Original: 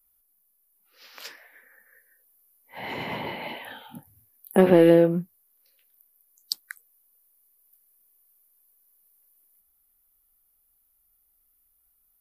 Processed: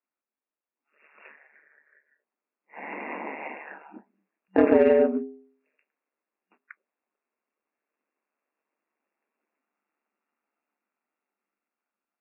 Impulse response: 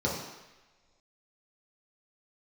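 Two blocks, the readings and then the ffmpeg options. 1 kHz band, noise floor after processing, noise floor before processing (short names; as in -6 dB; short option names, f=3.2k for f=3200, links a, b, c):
-1.5 dB, under -85 dBFS, -68 dBFS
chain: -filter_complex "[0:a]bandreject=f=335.6:t=h:w=4,bandreject=f=671.2:t=h:w=4,aeval=exprs='val(0)*sin(2*PI*74*n/s)':c=same,dynaudnorm=f=870:g=7:m=12.5dB,afftfilt=real='re*between(b*sr/4096,190,2800)':imag='im*between(b*sr/4096,190,2800)':win_size=4096:overlap=0.75,asplit=2[a][b];[b]asoftclip=type=tanh:threshold=-13.5dB,volume=-6.5dB[c];[a][c]amix=inputs=2:normalize=0,volume=-5dB"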